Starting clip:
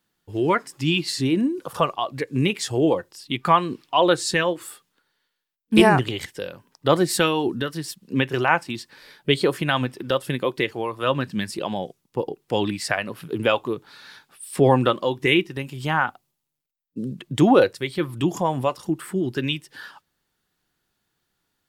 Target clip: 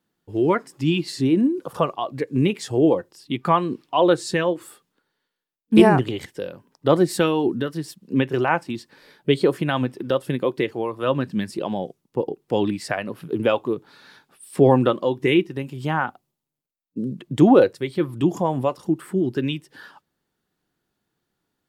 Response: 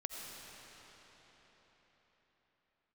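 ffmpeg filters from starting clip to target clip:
-af "equalizer=frequency=290:width=0.34:gain=9,volume=-6dB"

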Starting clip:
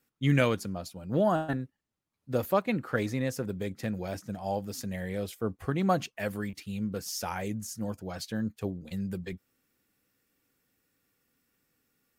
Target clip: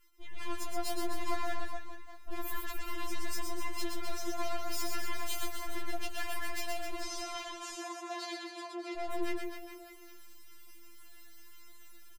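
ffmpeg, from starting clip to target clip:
ffmpeg -i in.wav -filter_complex "[0:a]aeval=exprs='if(lt(val(0),0),0.447*val(0),val(0))':channel_layout=same,aecho=1:1:6.8:0.78,acompressor=threshold=-38dB:ratio=12,alimiter=level_in=9dB:limit=-24dB:level=0:latency=1:release=145,volume=-9dB,dynaudnorm=framelen=280:gausssize=3:maxgain=9dB,aeval=exprs='(tanh(200*val(0)+0.7)-tanh(0.7))/200':channel_layout=same,asettb=1/sr,asplit=3[link_01][link_02][link_03];[link_01]atrim=end=6.944[link_04];[link_02]atrim=start=6.94:end=8.98,asetpts=PTS-STARTPTS,afade=type=in:duration=0.004:curve=qsin,afade=type=out:start_time=2.036:duration=0.004:curve=qsin,highpass=310,lowpass=4900[link_05];[link_03]atrim=start=8.976[link_06];[link_04][link_05]acrossfade=duration=0.004:curve1=hsin:curve2=qsin[link_07];[link_07][link_06]acrossfade=duration=0.004:curve1=qsin:curve2=hsin,aecho=1:1:120|258|416.7|599.2|809.1:0.631|0.398|0.251|0.158|0.1,afftfilt=real='re*4*eq(mod(b,16),0)':imag='im*4*eq(mod(b,16),0)':win_size=2048:overlap=0.75,volume=14dB" out.wav

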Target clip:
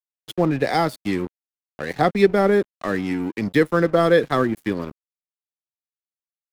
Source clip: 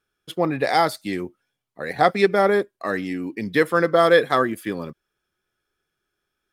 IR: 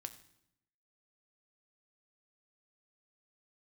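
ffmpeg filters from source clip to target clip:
-filter_complex "[0:a]aeval=exprs='sgn(val(0))*max(abs(val(0))-0.0141,0)':channel_layout=same,acrossover=split=360[link_01][link_02];[link_02]acompressor=threshold=-43dB:ratio=1.5[link_03];[link_01][link_03]amix=inputs=2:normalize=0,volume=7dB"

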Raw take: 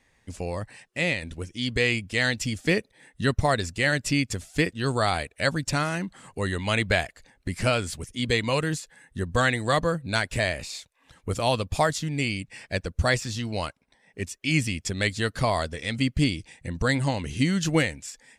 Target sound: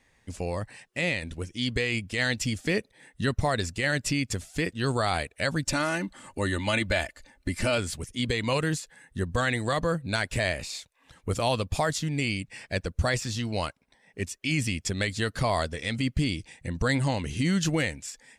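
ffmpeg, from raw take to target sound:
ffmpeg -i in.wav -filter_complex "[0:a]asettb=1/sr,asplit=3[link_01][link_02][link_03];[link_01]atrim=end=5.644[link_04];[link_02]atrim=start=5.64:end=7.78,asetpts=PTS-STARTPTS,afade=type=in:duration=0.004:curve=qsin,afade=type=out:start_time=2.136:duration=0.004:curve=qsin,aecho=1:1:3.4:0.55,atrim=end_sample=94374[link_05];[link_03]atrim=start=7.776[link_06];[link_04][link_05]acrossfade=duration=0.004:curve1=hsin:curve2=qsin[link_07];[link_07][link_06]acrossfade=duration=0.004:curve1=qsin:curve2=hsin,alimiter=limit=-15dB:level=0:latency=1:release=30" out.wav

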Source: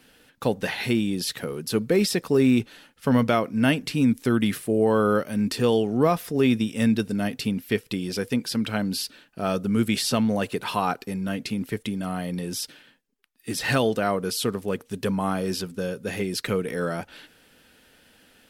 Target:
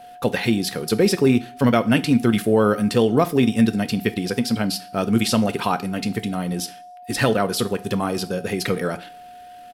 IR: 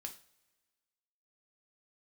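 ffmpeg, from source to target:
-filter_complex "[0:a]aeval=exprs='val(0)+0.00631*sin(2*PI*720*n/s)':channel_layout=same,atempo=1.9,asplit=2[link_01][link_02];[1:a]atrim=start_sample=2205,afade=type=out:start_time=0.36:duration=0.01,atrim=end_sample=16317,asetrate=41895,aresample=44100[link_03];[link_02][link_03]afir=irnorm=-1:irlink=0,volume=0.5dB[link_04];[link_01][link_04]amix=inputs=2:normalize=0"

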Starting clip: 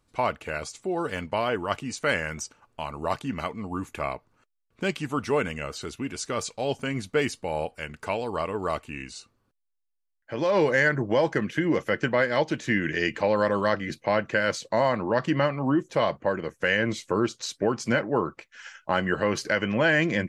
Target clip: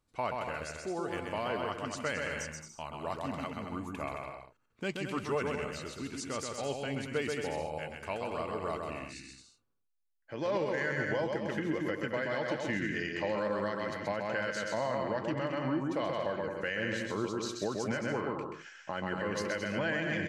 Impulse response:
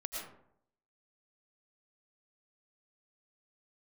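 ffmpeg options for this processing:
-af "aecho=1:1:130|221|284.7|329.3|360.5:0.631|0.398|0.251|0.158|0.1,alimiter=limit=-14dB:level=0:latency=1:release=135,volume=-8.5dB"

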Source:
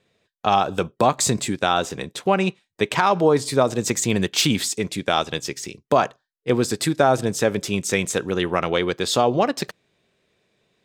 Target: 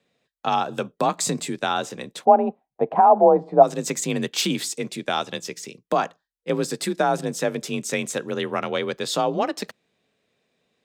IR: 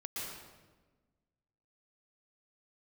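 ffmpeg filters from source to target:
-filter_complex "[0:a]afreqshift=38,asplit=3[link_01][link_02][link_03];[link_01]afade=type=out:start_time=2.24:duration=0.02[link_04];[link_02]lowpass=frequency=750:width_type=q:width=7.9,afade=type=in:start_time=2.24:duration=0.02,afade=type=out:start_time=3.62:duration=0.02[link_05];[link_03]afade=type=in:start_time=3.62:duration=0.02[link_06];[link_04][link_05][link_06]amix=inputs=3:normalize=0,volume=-4dB"

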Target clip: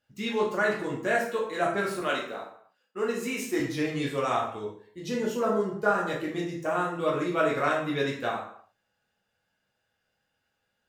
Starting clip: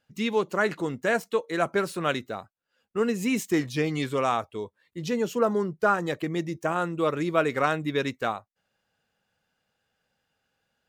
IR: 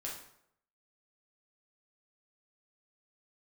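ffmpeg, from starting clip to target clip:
-filter_complex "[0:a]asettb=1/sr,asplit=3[link_01][link_02][link_03];[link_01]atrim=end=2.004[link_04];[link_02]atrim=start=2:end=3.6,asetpts=PTS-STARTPTS,afade=type=in:duration=0.004:curve=qsin,afade=type=out:start_time=1.596:duration=0.004:curve=qsin,highpass=280[link_05];[link_03]atrim=start=3.596[link_06];[link_04][link_05]acrossfade=duration=0.004:curve1=hsin:curve2=qsin[link_07];[link_07][link_06]acrossfade=duration=0.004:curve1=qsin:curve2=hsin[link_08];[1:a]atrim=start_sample=2205,afade=type=out:start_time=0.44:duration=0.01,atrim=end_sample=19845,asetrate=48510,aresample=44100[link_09];[link_08][link_09]afir=irnorm=-1:irlink=0"

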